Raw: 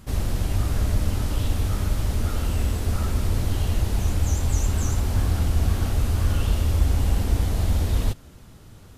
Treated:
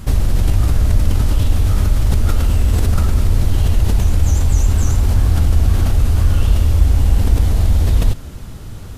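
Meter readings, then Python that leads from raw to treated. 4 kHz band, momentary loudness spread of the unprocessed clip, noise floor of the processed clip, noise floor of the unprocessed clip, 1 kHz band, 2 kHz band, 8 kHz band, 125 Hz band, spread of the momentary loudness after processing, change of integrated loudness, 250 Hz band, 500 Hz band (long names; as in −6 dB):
+4.5 dB, 3 LU, −30 dBFS, −46 dBFS, +4.5 dB, +4.5 dB, +4.5 dB, +8.5 dB, 2 LU, +8.5 dB, +5.5 dB, +5.0 dB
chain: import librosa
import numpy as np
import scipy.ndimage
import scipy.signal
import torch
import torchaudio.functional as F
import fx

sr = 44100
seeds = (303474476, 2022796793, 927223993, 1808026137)

p1 = fx.low_shelf(x, sr, hz=90.0, db=8.0)
p2 = fx.over_compress(p1, sr, threshold_db=-22.0, ratio=-0.5)
p3 = p1 + F.gain(torch.from_numpy(p2), -3.0).numpy()
y = F.gain(torch.from_numpy(p3), 2.0).numpy()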